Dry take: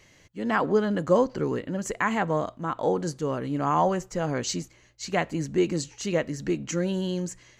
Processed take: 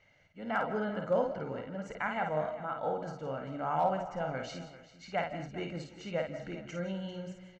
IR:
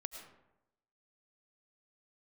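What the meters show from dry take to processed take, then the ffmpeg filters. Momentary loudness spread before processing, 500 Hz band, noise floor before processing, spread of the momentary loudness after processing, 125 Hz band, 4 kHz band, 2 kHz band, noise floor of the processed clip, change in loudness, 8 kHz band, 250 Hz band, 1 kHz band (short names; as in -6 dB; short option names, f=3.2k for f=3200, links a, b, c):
8 LU, -8.0 dB, -57 dBFS, 11 LU, -10.5 dB, -10.5 dB, -7.0 dB, -60 dBFS, -8.5 dB, -21.5 dB, -12.0 dB, -6.0 dB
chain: -filter_complex "[0:a]lowpass=2.7k,lowshelf=f=210:g=-8,aecho=1:1:1.4:0.63,asoftclip=type=hard:threshold=-12.5dB,aecho=1:1:394:0.158,asplit=2[a][b];[1:a]atrim=start_sample=2205,afade=t=out:st=0.26:d=0.01,atrim=end_sample=11907,adelay=52[c];[b][c]afir=irnorm=-1:irlink=0,volume=-1.5dB[d];[a][d]amix=inputs=2:normalize=0,volume=-8.5dB"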